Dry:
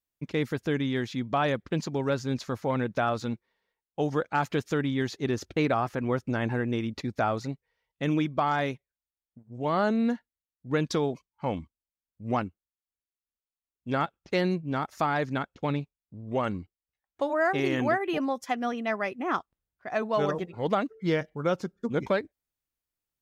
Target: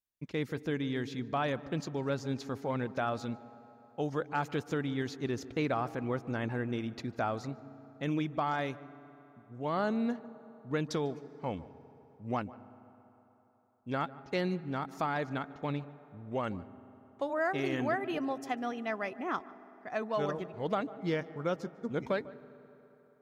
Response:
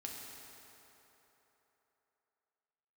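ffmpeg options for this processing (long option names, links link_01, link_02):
-filter_complex "[0:a]asplit=2[link_01][link_02];[1:a]atrim=start_sample=2205,highshelf=frequency=2400:gain=-11,adelay=148[link_03];[link_02][link_03]afir=irnorm=-1:irlink=0,volume=-12.5dB[link_04];[link_01][link_04]amix=inputs=2:normalize=0,volume=-6dB"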